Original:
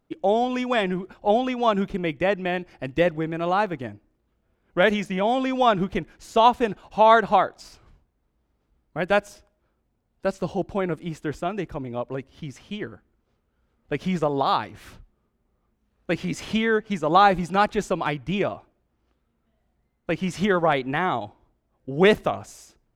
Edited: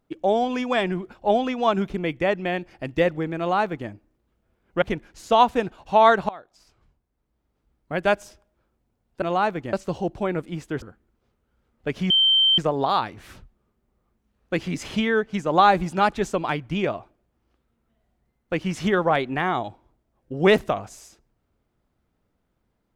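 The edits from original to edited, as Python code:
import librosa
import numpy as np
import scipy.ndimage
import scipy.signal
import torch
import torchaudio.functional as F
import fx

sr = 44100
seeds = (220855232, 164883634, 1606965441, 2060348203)

y = fx.edit(x, sr, fx.duplicate(start_s=3.38, length_s=0.51, to_s=10.27),
    fx.cut(start_s=4.82, length_s=1.05),
    fx.fade_in_from(start_s=7.34, length_s=1.68, floor_db=-23.0),
    fx.cut(start_s=11.36, length_s=1.51),
    fx.insert_tone(at_s=14.15, length_s=0.48, hz=3120.0, db=-14.5), tone=tone)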